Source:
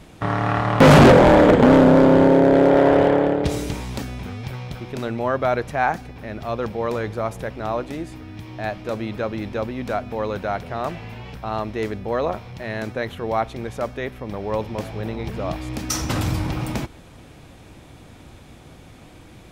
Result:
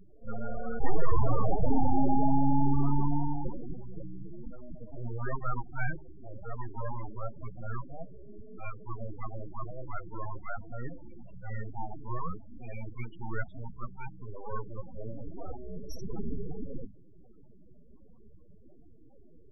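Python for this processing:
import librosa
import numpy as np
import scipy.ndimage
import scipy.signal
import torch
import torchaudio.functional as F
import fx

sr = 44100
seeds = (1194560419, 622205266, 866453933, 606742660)

y = np.abs(x)
y = fx.hum_notches(y, sr, base_hz=50, count=5)
y = fx.spec_topn(y, sr, count=8)
y = fx.attack_slew(y, sr, db_per_s=250.0)
y = y * librosa.db_to_amplitude(-5.0)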